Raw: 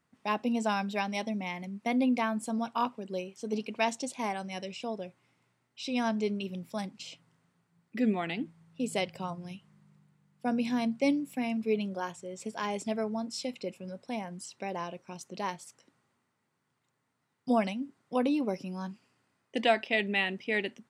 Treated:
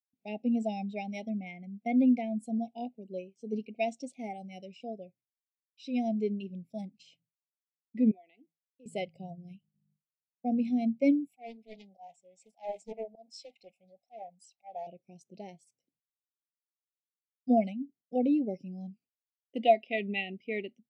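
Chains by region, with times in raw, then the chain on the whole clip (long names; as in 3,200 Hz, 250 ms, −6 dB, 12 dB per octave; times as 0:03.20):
0:08.11–0:08.86: high-pass filter 590 Hz + downward compressor 2 to 1, threshold −51 dBFS + spectral tilt −1.5 dB per octave
0:11.27–0:14.87: low shelf with overshoot 560 Hz −11 dB, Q 3 + volume swells 135 ms + highs frequency-modulated by the lows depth 0.67 ms
whole clip: elliptic band-stop filter 760–2,100 Hz, stop band 50 dB; noise gate with hold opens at −54 dBFS; every bin expanded away from the loudest bin 1.5 to 1; level +2.5 dB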